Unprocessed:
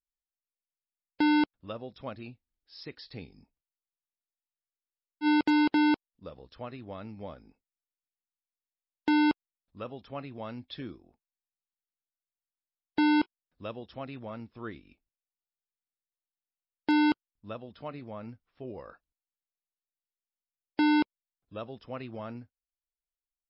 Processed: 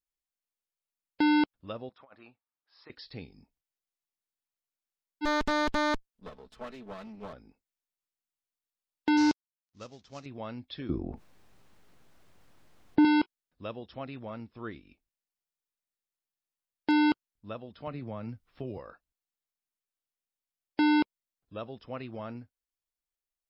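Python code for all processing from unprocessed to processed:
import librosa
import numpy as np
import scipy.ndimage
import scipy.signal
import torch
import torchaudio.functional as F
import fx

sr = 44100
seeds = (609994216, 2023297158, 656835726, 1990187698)

y = fx.chain(x, sr, fx.bandpass_q(hz=1100.0, q=2.0),
    fx.over_compress(threshold_db=-54.0, ratio=-1.0), at=(1.89, 2.9))
y = fx.chain(y, sr, fx.lower_of_two(delay_ms=4.6),
    fx.doppler_dist(depth_ms=0.31), at=(5.25, 7.33))
y = fx.chain(y, sr, fx.cvsd(bps=32000),
    fx.bass_treble(bass_db=3, treble_db=13),
    fx.upward_expand(threshold_db=-42.0, expansion=1.5), at=(9.17, 10.26))
y = fx.chain(y, sr, fx.lowpass(hz=1200.0, slope=6),
    fx.low_shelf(hz=360.0, db=8.5),
    fx.env_flatten(amount_pct=50), at=(10.89, 13.05))
y = fx.chain(y, sr, fx.low_shelf(hz=140.0, db=9.5),
    fx.band_squash(depth_pct=70), at=(17.87, 18.78))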